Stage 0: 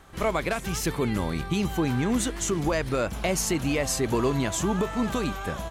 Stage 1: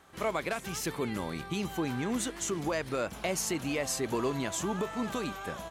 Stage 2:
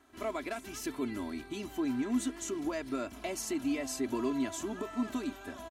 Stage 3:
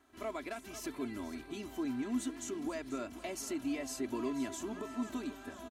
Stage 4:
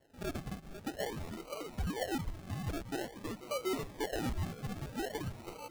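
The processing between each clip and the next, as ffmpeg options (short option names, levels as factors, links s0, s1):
-af "highpass=f=200:p=1,volume=0.562"
-af "equalizer=f=260:w=3.3:g=10.5,aecho=1:1:3:0.77,volume=0.398"
-af "aecho=1:1:490|980|1470|1960:0.2|0.0898|0.0404|0.0182,volume=0.631"
-af "bandreject=f=50:t=h:w=6,bandreject=f=100:t=h:w=6,bandreject=f=150:t=h:w=6,bandreject=f=200:t=h:w=6,bandreject=f=250:t=h:w=6,lowpass=f=2800:t=q:w=0.5098,lowpass=f=2800:t=q:w=0.6013,lowpass=f=2800:t=q:w=0.9,lowpass=f=2800:t=q:w=2.563,afreqshift=-3300,acrusher=samples=36:mix=1:aa=0.000001:lfo=1:lforange=21.6:lforate=0.49,volume=1.12"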